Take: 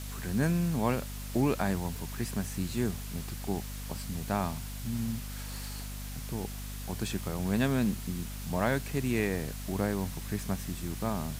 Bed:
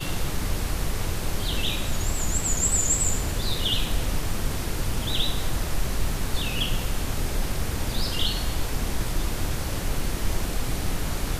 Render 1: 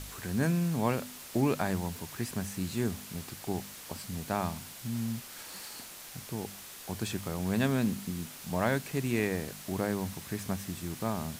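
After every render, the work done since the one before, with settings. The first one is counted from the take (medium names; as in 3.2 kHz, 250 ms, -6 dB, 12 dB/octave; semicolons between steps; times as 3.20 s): de-hum 50 Hz, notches 5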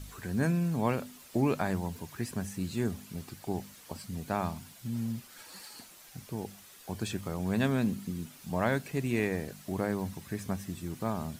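noise reduction 9 dB, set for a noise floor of -47 dBFS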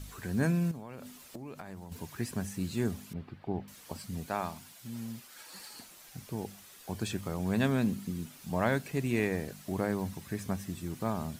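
0.71–1.92 s: compression 20:1, threshold -39 dBFS; 3.13–3.68 s: distance through air 400 m; 4.26–5.53 s: bass shelf 270 Hz -10 dB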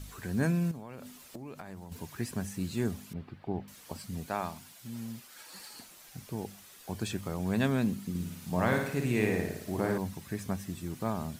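8.09–9.98 s: flutter echo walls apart 9.6 m, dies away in 0.73 s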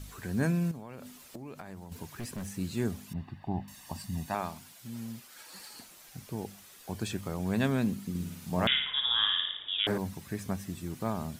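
2.03–2.58 s: overload inside the chain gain 34.5 dB; 3.08–4.35 s: comb 1.1 ms, depth 69%; 8.67–9.87 s: frequency inversion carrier 3.6 kHz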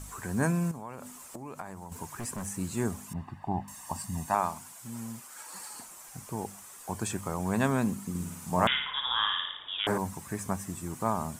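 ten-band graphic EQ 1 kHz +10 dB, 4 kHz -7 dB, 8 kHz +11 dB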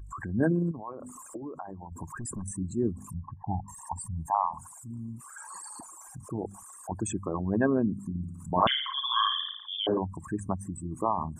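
resonances exaggerated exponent 3; small resonant body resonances 320/1100/1600 Hz, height 8 dB, ringing for 40 ms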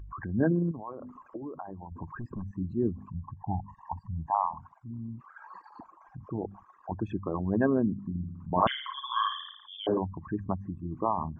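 Gaussian low-pass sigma 3.1 samples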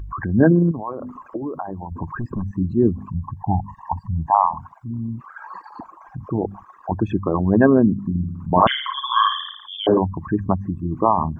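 trim +11.5 dB; peak limiter -1 dBFS, peak gain reduction 2.5 dB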